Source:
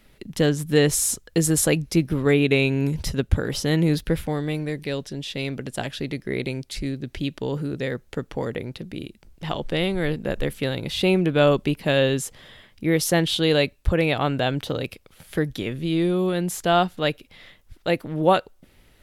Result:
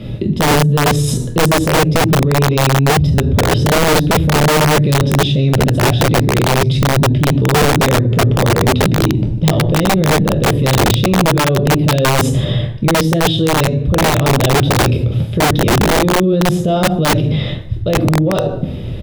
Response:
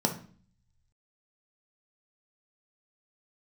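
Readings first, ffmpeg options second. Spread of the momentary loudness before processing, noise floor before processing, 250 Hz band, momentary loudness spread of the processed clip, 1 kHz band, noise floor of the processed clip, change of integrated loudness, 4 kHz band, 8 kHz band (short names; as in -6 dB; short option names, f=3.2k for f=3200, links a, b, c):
11 LU, -57 dBFS, +9.5 dB, 4 LU, +13.5 dB, -22 dBFS, +10.0 dB, +10.0 dB, +8.0 dB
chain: -filter_complex "[0:a]lowpass=f=3.7k:p=1,lowshelf=f=110:g=4.5,areverse,acompressor=threshold=-32dB:ratio=16,areverse,asoftclip=type=tanh:threshold=-29dB,asplit=2[a][b];[b]adynamicsmooth=sensitivity=0.5:basefreq=660,volume=-1.5dB[c];[a][c]amix=inputs=2:normalize=0,aecho=1:1:15|25|44:0.178|0.299|0.158[d];[1:a]atrim=start_sample=2205,afade=t=out:st=0.37:d=0.01,atrim=end_sample=16758,asetrate=28665,aresample=44100[e];[d][e]afir=irnorm=-1:irlink=0,aeval=exprs='(mod(2.66*val(0)+1,2)-1)/2.66':c=same,alimiter=level_in=17dB:limit=-1dB:release=50:level=0:latency=1,volume=-6dB"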